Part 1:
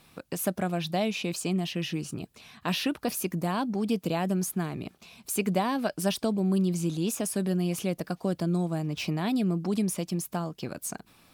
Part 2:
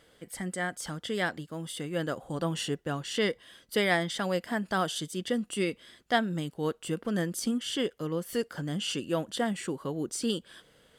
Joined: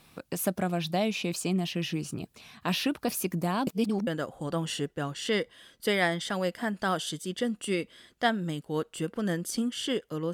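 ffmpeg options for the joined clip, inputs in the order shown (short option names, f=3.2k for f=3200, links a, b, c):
-filter_complex "[0:a]apad=whole_dur=10.33,atrim=end=10.33,asplit=2[a][b];[a]atrim=end=3.672[c];[b]atrim=start=3.668:end=4.072,asetpts=PTS-STARTPTS,areverse[d];[1:a]atrim=start=1.958:end=8.22[e];[c][d]acrossfade=d=0.004:c1=hsin:c2=hsin[f];[f][e]acrossfade=d=0.004:c1=hsin:c2=hsin"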